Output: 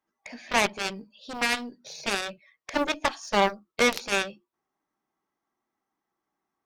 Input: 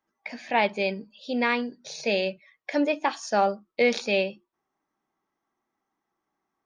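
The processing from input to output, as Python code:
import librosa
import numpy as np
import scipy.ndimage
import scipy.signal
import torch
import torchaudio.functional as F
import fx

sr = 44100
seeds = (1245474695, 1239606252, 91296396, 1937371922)

y = fx.quant_float(x, sr, bits=6)
y = fx.cheby_harmonics(y, sr, harmonics=(6, 7), levels_db=(-37, -12), full_scale_db=-9.5)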